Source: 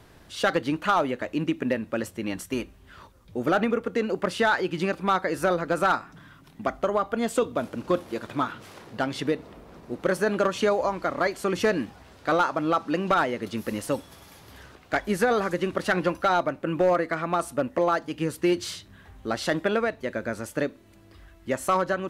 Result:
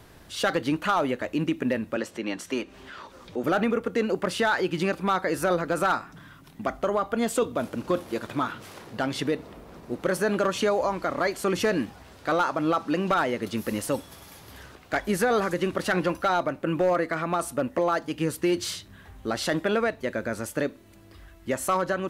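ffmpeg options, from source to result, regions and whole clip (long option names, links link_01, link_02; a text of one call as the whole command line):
ffmpeg -i in.wav -filter_complex "[0:a]asettb=1/sr,asplit=3[link_01][link_02][link_03];[link_01]atrim=end=1.964[link_04];[link_02]atrim=start=1.96:end=3.44,asetpts=PTS-STARTPTS,afade=type=in:duration=0.004:curve=qsin,afade=type=out:start_time=1.476:duration=0.004:curve=qsin,acrossover=split=210 7100:gain=0.158 1 0.158[link_05][link_06][link_07];[link_05][link_06][link_07]amix=inputs=3:normalize=0,acompressor=mode=upward:threshold=-35dB:ratio=2.5:attack=3.2:release=140:knee=2.83:detection=peak[link_08];[link_03]atrim=start=3.436[link_09];[link_04][link_08]acrossfade=duration=0.004:curve1=hsin:curve2=qsin[link_10];[link_10][link_09]acrossfade=duration=0.004:curve1=qsin:curve2=hsin,alimiter=limit=-17dB:level=0:latency=1:release=16,highshelf=frequency=9000:gain=5,volume=1.5dB" out.wav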